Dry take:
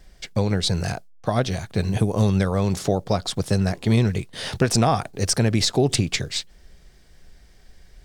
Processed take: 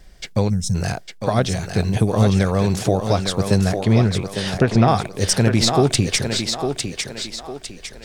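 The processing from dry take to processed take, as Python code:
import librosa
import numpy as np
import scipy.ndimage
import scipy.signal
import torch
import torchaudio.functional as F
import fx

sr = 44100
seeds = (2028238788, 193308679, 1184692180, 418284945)

y = fx.spec_box(x, sr, start_s=0.49, length_s=0.26, low_hz=250.0, high_hz=5100.0, gain_db=-20)
y = fx.env_lowpass_down(y, sr, base_hz=2400.0, full_db=-17.0, at=(3.79, 4.88))
y = fx.echo_thinned(y, sr, ms=854, feedback_pct=41, hz=230.0, wet_db=-5)
y = F.gain(torch.from_numpy(y), 3.0).numpy()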